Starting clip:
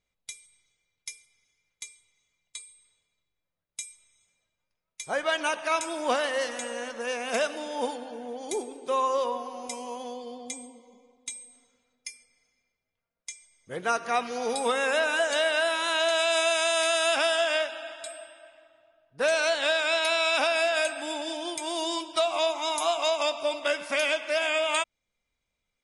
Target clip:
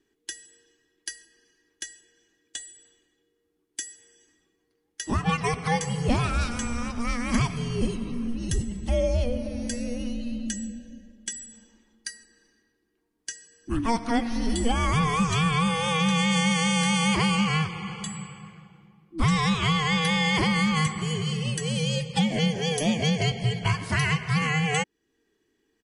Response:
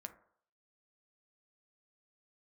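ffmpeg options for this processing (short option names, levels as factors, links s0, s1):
-filter_complex "[0:a]asplit=2[s0][s1];[s1]acompressor=threshold=0.0112:ratio=6,volume=1.19[s2];[s0][s2]amix=inputs=2:normalize=0,equalizer=f=150:t=o:w=1.7:g=15,afreqshift=-470,acontrast=21,aresample=32000,aresample=44100,volume=0.531"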